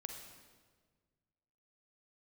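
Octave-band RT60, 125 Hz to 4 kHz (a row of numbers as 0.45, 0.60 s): 2.3, 1.9, 1.7, 1.4, 1.3, 1.2 s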